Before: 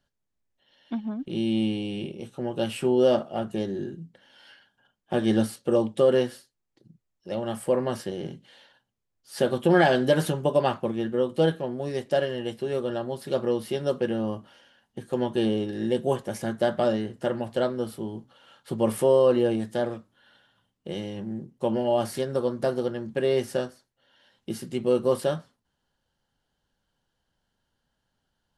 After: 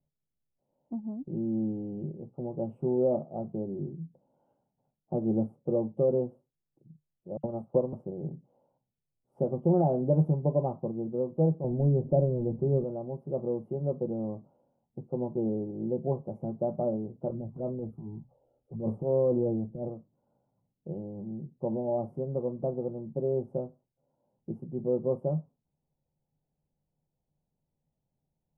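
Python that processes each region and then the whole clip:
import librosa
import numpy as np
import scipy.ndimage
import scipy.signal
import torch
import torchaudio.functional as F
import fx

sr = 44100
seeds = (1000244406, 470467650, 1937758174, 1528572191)

y = fx.chain(x, sr, fx.peak_eq(hz=1400.0, db=5.5, octaves=0.46),
    fx.dispersion(late='lows', ms=67.0, hz=2800.0),
    fx.transient(attack_db=5, sustain_db=-6), at=(7.37, 7.93))
y = fx.chain(y, sr, fx.law_mismatch(coded='mu'),
    fx.tilt_eq(slope=-3.5),
    fx.hum_notches(base_hz=50, count=5), at=(11.64, 12.84))
y = fx.chain(y, sr, fx.low_shelf(hz=79.0, db=11.5),
    fx.transient(attack_db=-10, sustain_db=2),
    fx.env_phaser(low_hz=150.0, high_hz=4300.0, full_db=-21.5), at=(17.3, 19.88))
y = scipy.signal.sosfilt(scipy.signal.cheby2(4, 40, 1600.0, 'lowpass', fs=sr, output='sos'), y)
y = fx.peak_eq(y, sr, hz=150.0, db=12.5, octaves=0.31)
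y = y * librosa.db_to_amplitude(-6.0)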